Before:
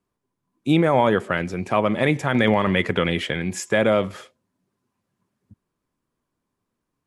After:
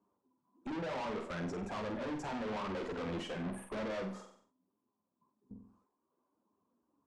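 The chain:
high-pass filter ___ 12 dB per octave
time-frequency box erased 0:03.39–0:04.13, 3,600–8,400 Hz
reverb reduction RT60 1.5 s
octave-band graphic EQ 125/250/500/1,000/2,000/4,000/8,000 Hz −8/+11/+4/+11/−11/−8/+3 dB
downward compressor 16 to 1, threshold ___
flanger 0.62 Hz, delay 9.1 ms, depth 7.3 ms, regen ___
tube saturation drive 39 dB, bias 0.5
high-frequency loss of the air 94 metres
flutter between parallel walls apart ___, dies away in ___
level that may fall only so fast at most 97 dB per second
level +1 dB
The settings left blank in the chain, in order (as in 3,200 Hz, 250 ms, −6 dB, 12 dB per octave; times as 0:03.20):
66 Hz, −17 dBFS, −8%, 8 metres, 0.41 s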